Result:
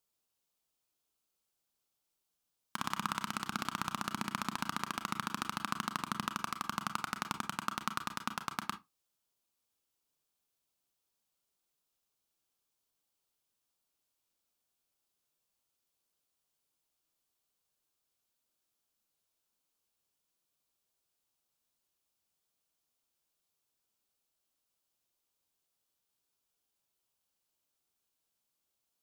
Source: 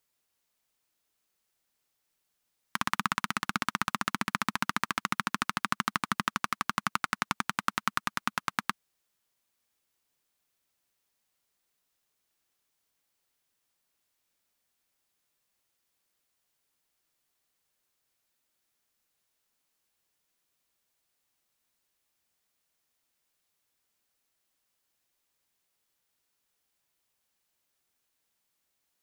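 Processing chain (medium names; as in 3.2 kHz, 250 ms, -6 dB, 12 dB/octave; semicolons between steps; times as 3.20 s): peaking EQ 1.9 kHz -8 dB 0.62 oct; reverberation RT60 0.20 s, pre-delay 29 ms, DRR 8.5 dB; trim -5 dB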